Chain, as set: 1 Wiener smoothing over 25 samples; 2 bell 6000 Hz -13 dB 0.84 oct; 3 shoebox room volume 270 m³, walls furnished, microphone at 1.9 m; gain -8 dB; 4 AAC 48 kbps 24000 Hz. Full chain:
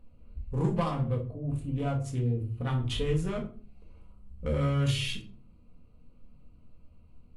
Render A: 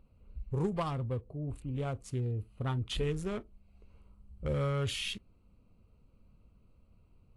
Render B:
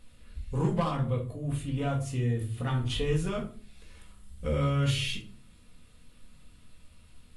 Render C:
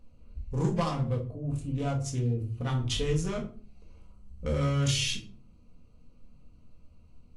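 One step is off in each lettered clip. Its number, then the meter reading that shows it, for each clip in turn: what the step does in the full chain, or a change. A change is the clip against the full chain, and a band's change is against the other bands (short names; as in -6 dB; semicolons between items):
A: 3, 250 Hz band -3.0 dB; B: 1, 8 kHz band +1.5 dB; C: 2, 8 kHz band +9.5 dB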